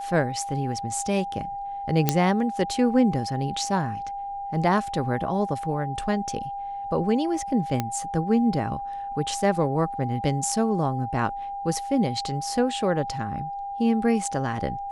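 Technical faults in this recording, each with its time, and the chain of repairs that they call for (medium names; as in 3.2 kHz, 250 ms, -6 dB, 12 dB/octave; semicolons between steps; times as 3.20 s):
whine 800 Hz -30 dBFS
2.09 s: pop -4 dBFS
7.80 s: pop -11 dBFS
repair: de-click; band-stop 800 Hz, Q 30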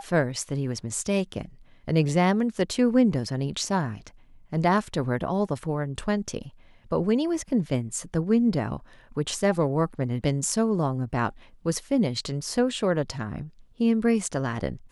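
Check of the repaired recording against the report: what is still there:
nothing left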